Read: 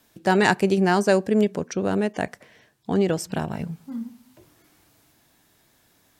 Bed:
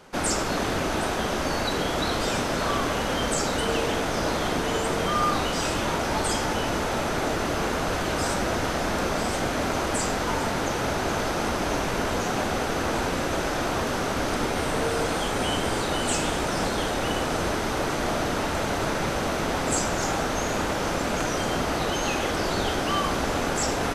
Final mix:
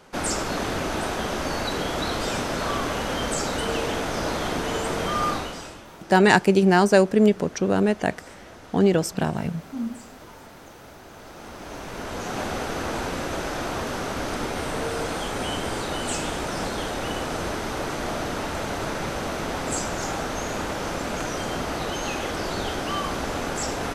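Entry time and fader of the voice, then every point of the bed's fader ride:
5.85 s, +2.5 dB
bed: 5.3 s -1 dB
5.87 s -19 dB
11.09 s -19 dB
12.42 s -2.5 dB

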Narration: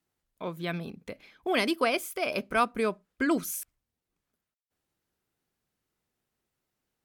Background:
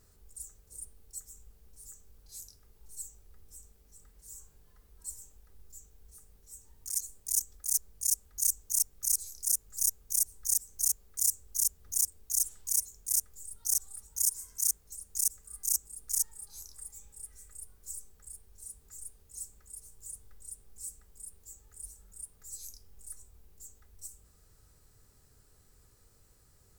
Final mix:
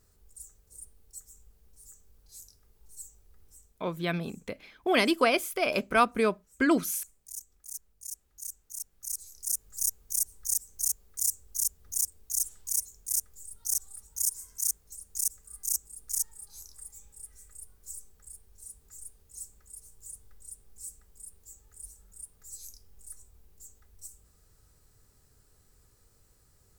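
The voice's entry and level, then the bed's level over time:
3.40 s, +2.5 dB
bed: 3.45 s -2.5 dB
4.08 s -12 dB
8.71 s -12 dB
9.64 s -0.5 dB

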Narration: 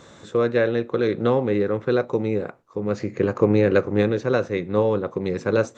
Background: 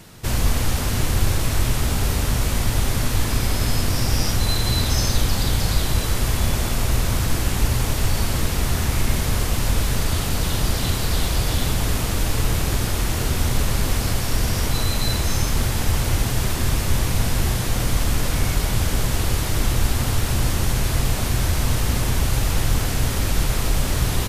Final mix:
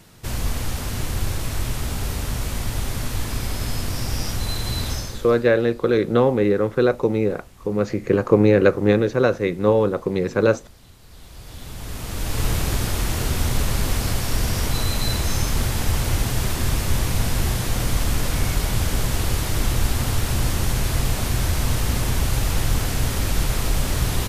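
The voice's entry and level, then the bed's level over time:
4.90 s, +3.0 dB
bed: 4.9 s -5 dB
5.52 s -27 dB
10.98 s -27 dB
12.45 s -1 dB

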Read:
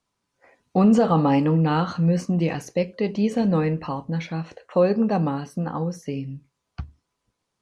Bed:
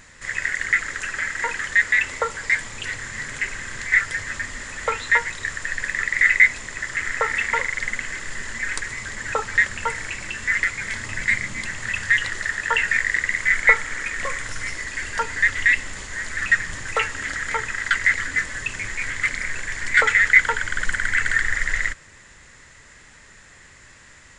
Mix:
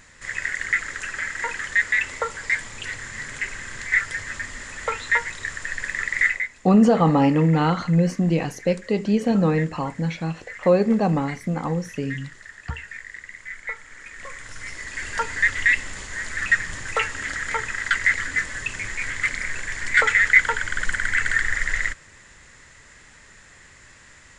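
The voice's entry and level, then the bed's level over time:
5.90 s, +1.5 dB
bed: 6.25 s -2.5 dB
6.48 s -17 dB
13.73 s -17 dB
15.12 s -1 dB

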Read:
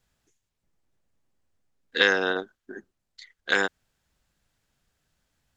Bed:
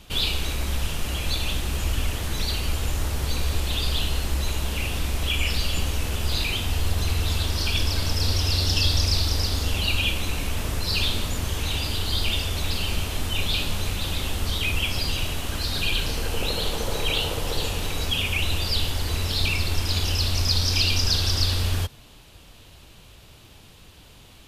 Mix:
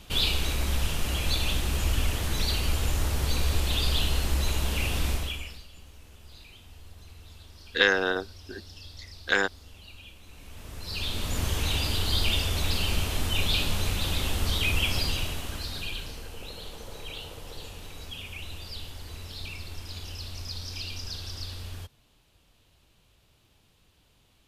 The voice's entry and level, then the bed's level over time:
5.80 s, -1.0 dB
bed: 5.12 s -1 dB
5.67 s -24.5 dB
10.21 s -24.5 dB
11.4 s -1 dB
14.96 s -1 dB
16.35 s -15 dB

